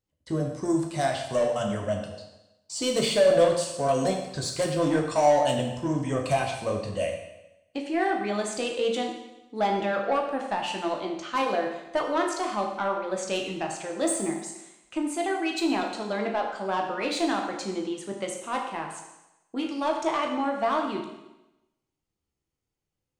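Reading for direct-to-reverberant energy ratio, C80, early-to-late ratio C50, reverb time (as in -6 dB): 1.0 dB, 7.0 dB, 5.0 dB, 0.95 s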